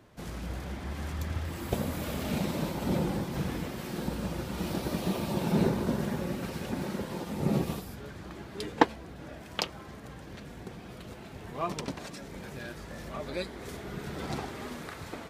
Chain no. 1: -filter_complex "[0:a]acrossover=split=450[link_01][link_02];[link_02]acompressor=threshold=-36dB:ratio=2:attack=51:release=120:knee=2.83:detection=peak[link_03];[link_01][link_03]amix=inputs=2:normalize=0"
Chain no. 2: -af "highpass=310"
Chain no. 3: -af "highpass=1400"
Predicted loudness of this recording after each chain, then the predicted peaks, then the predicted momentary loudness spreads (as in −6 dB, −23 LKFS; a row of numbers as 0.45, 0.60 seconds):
−34.5, −37.0, −43.0 LKFS; −7.5, −5.5, −11.0 dBFS; 15, 15, 14 LU